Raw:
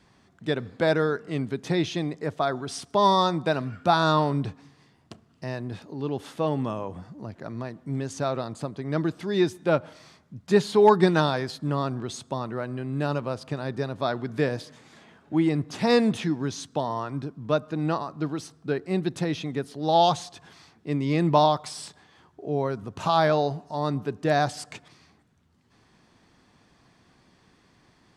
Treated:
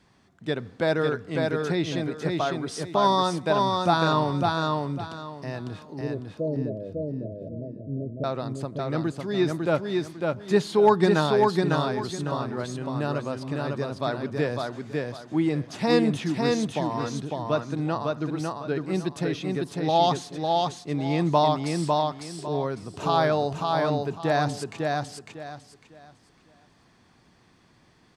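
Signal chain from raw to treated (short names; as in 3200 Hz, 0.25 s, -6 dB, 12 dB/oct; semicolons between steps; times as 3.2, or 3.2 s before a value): 6.01–8.24 Chebyshev low-pass 670 Hz, order 10; feedback echo 0.552 s, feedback 26%, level -3 dB; gain -1.5 dB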